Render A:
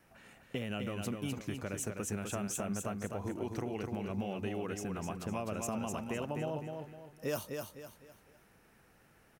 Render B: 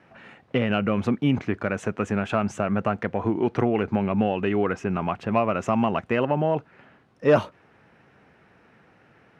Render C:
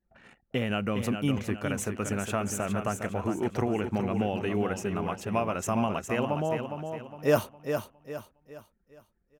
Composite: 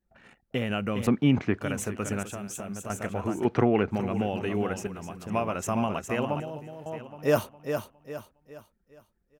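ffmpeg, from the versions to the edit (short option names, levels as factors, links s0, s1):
-filter_complex "[1:a]asplit=2[s0][s1];[0:a]asplit=3[s2][s3][s4];[2:a]asplit=6[s5][s6][s7][s8][s9][s10];[s5]atrim=end=1.072[s11];[s0]atrim=start=1.068:end=1.612[s12];[s6]atrim=start=1.608:end=2.232[s13];[s2]atrim=start=2.228:end=2.902[s14];[s7]atrim=start=2.898:end=3.452[s15];[s1]atrim=start=3.448:end=3.902[s16];[s8]atrim=start=3.898:end=4.872[s17];[s3]atrim=start=4.868:end=5.302[s18];[s9]atrim=start=5.298:end=6.402[s19];[s4]atrim=start=6.398:end=6.862[s20];[s10]atrim=start=6.858[s21];[s11][s12]acrossfade=d=0.004:c1=hsin:c2=hsin[s22];[s22][s13]acrossfade=d=0.004:c1=hsin:c2=hsin[s23];[s23][s14]acrossfade=d=0.004:c1=hsin:c2=hsin[s24];[s24][s15]acrossfade=d=0.004:c1=hsin:c2=hsin[s25];[s25][s16]acrossfade=d=0.004:c1=hsin:c2=hsin[s26];[s26][s17]acrossfade=d=0.004:c1=hsin:c2=hsin[s27];[s27][s18]acrossfade=d=0.004:c1=hsin:c2=hsin[s28];[s28][s19]acrossfade=d=0.004:c1=hsin:c2=hsin[s29];[s29][s20]acrossfade=d=0.004:c1=hsin:c2=hsin[s30];[s30][s21]acrossfade=d=0.004:c1=hsin:c2=hsin"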